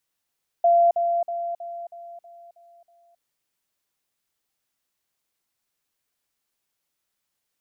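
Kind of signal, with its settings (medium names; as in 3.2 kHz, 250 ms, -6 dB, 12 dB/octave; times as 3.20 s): level ladder 687 Hz -13.5 dBFS, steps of -6 dB, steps 8, 0.27 s 0.05 s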